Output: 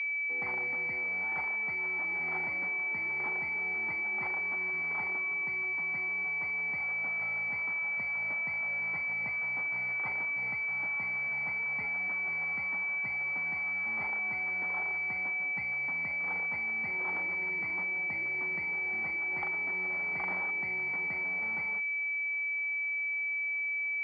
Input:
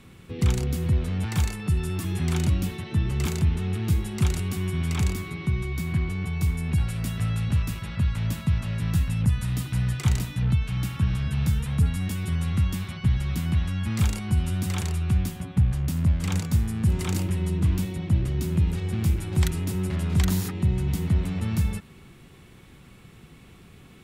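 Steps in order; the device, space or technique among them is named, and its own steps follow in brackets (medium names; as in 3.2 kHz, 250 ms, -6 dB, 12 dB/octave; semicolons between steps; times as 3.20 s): toy sound module (decimation joined by straight lines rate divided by 4×; class-D stage that switches slowly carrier 2.3 kHz; cabinet simulation 720–5000 Hz, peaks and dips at 820 Hz +7 dB, 2 kHz +7 dB, 3.1 kHz +4 dB); trim -1.5 dB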